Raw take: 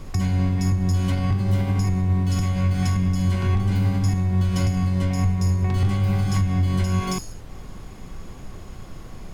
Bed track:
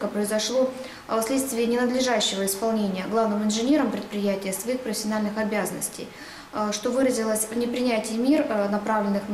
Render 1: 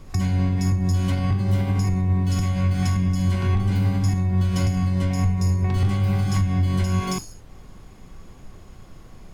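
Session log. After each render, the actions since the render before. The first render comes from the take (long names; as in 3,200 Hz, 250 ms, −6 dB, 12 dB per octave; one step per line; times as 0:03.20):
noise reduction from a noise print 6 dB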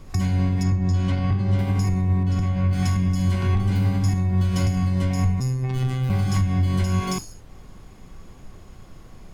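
0:00.63–0:01.59: high-frequency loss of the air 83 metres
0:02.23–0:02.73: low-pass filter 1,900 Hz 6 dB per octave
0:05.40–0:06.10: phases set to zero 129 Hz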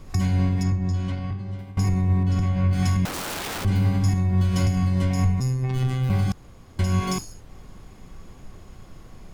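0:00.42–0:01.77: fade out, to −20.5 dB
0:03.05–0:03.65: wrap-around overflow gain 26 dB
0:06.32–0:06.79: fill with room tone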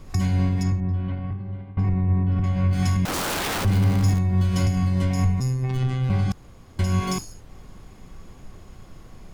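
0:00.80–0:02.44: high-frequency loss of the air 440 metres
0:03.08–0:04.19: converter with a step at zero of −27 dBFS
0:05.77–0:06.31: high-frequency loss of the air 54 metres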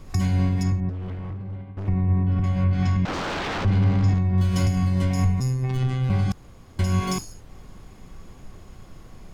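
0:00.89–0:01.88: hard clipping −29 dBFS
0:02.64–0:04.38: high-frequency loss of the air 160 metres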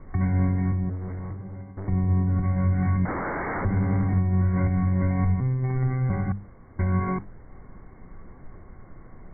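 Chebyshev low-pass filter 2,200 Hz, order 10
mains-hum notches 50/100/150/200 Hz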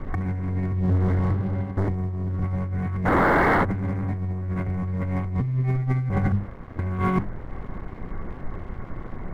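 leveller curve on the samples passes 2
compressor whose output falls as the input rises −22 dBFS, ratio −0.5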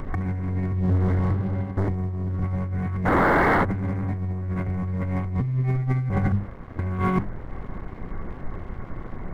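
upward compression, threshold −34 dBFS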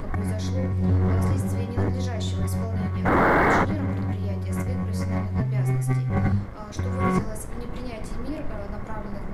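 mix in bed track −13.5 dB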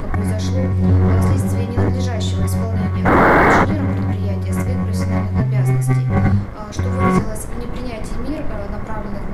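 level +7.5 dB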